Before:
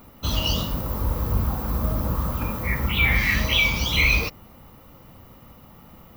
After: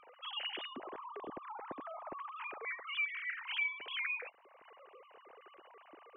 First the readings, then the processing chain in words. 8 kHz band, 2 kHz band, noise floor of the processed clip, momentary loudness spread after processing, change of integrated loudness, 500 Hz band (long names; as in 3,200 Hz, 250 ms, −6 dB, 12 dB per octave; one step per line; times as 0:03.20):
below −40 dB, −15.0 dB, −63 dBFS, 23 LU, −17.0 dB, −15.5 dB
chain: three sine waves on the formant tracks
dynamic equaliser 2,600 Hz, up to −5 dB, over −26 dBFS, Q 0.93
downward compressor 2 to 1, threshold −47 dBFS, peak gain reduction 18 dB
level −1 dB